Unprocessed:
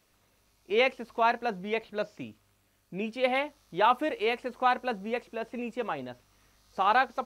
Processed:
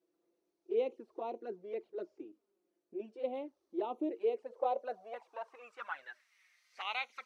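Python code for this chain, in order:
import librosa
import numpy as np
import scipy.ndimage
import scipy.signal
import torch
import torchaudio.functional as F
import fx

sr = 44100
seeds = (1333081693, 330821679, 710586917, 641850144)

y = fx.env_flanger(x, sr, rest_ms=6.1, full_db=-23.5)
y = fx.bass_treble(y, sr, bass_db=-12, treble_db=14)
y = fx.filter_sweep_bandpass(y, sr, from_hz=350.0, to_hz=2100.0, start_s=4.17, end_s=6.33, q=6.2)
y = y * 10.0 ** (8.0 / 20.0)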